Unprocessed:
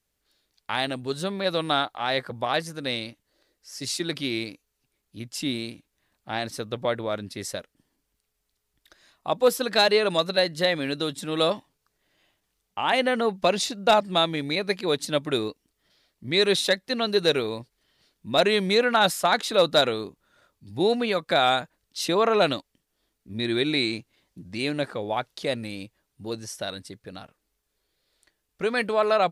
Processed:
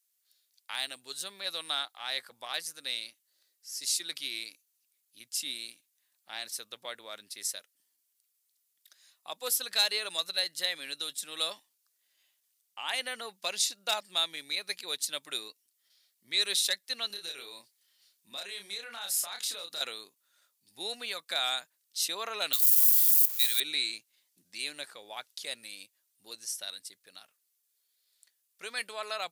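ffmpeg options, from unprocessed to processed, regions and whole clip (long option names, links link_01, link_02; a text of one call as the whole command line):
ffmpeg -i in.wav -filter_complex "[0:a]asettb=1/sr,asplit=3[link_01][link_02][link_03];[link_01]atrim=end=17.074[link_04];[link_02]atrim=start=17.07:end=19.81,asetpts=PTS-STARTPTS,afade=type=in:duration=0.004:curve=qsin,afade=type=out:start_time=2.736:duration=0.004:curve=qsin,acompressor=threshold=-28dB:ratio=5:attack=3.2:release=140:knee=1:detection=peak,asplit=2[link_05][link_06];[link_06]adelay=30,volume=-4dB[link_07];[link_05][link_07]amix=inputs=2:normalize=0,atrim=end_sample=120834[link_08];[link_03]atrim=start=19.806[link_09];[link_04][link_08]acrossfade=duration=0.004:curve1=hsin:curve2=qsin[link_10];[link_10][link_09]acrossfade=duration=0.004:curve1=qsin:curve2=hsin,asettb=1/sr,asplit=3[link_11][link_12][link_13];[link_11]atrim=end=22.534[link_14];[link_12]atrim=start=22.53:end=23.6,asetpts=PTS-STARTPTS,afade=type=in:duration=0.004:curve=qsin,afade=type=out:start_time=1.066:duration=0.004:curve=qsin,aeval=exprs='val(0)+0.5*0.0168*sgn(val(0))':channel_layout=same,highpass=frequency=830:width=0.5412,highpass=frequency=830:width=1.3066,aemphasis=mode=production:type=75fm[link_15];[link_13]atrim=start=23.596[link_16];[link_14][link_15]acrossfade=duration=0.004:curve1=hsin:curve2=qsin[link_17];[link_17][link_16]acrossfade=duration=0.004:curve1=qsin:curve2=hsin,highpass=110,aderivative,volume=2.5dB" out.wav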